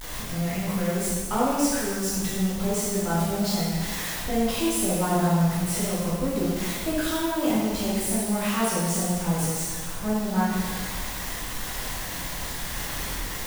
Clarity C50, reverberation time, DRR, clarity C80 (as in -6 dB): -2.0 dB, 1.6 s, -8.0 dB, 1.0 dB